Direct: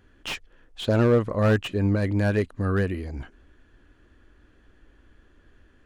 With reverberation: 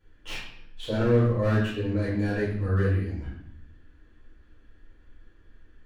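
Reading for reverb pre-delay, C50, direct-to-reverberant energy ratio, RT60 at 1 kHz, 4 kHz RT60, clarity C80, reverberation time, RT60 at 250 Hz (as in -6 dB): 4 ms, 2.0 dB, -11.0 dB, 0.60 s, 0.60 s, 5.0 dB, 0.70 s, 1.1 s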